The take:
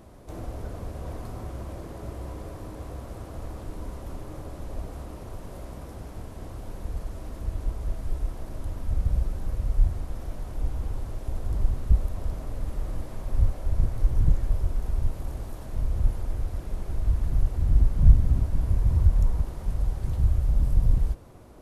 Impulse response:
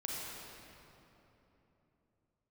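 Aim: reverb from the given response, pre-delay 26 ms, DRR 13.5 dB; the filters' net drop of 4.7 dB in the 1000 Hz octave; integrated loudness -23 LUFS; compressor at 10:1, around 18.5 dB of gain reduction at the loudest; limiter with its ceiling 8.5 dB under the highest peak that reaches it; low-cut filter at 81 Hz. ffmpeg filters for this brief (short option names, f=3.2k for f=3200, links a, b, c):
-filter_complex "[0:a]highpass=81,equalizer=f=1k:t=o:g=-6.5,acompressor=threshold=-36dB:ratio=10,alimiter=level_in=12dB:limit=-24dB:level=0:latency=1,volume=-12dB,asplit=2[a][b];[1:a]atrim=start_sample=2205,adelay=26[c];[b][c]afir=irnorm=-1:irlink=0,volume=-15.5dB[d];[a][d]amix=inputs=2:normalize=0,volume=22.5dB"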